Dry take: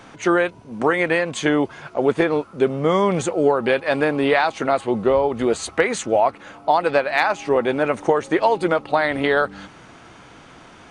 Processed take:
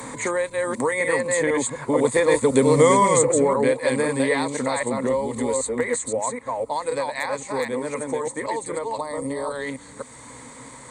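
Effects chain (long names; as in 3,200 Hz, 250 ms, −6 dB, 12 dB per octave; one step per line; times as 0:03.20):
delay that plays each chunk backwards 255 ms, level −2.5 dB
source passing by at 0:02.78, 6 m/s, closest 1.5 metres
EQ curve with evenly spaced ripples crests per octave 1, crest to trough 13 dB
gain on a spectral selection 0:09.00–0:09.50, 1,300–4,300 Hz −12 dB
high shelf with overshoot 5,600 Hz +13.5 dB, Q 1.5
multiband upward and downward compressor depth 70%
level +7.5 dB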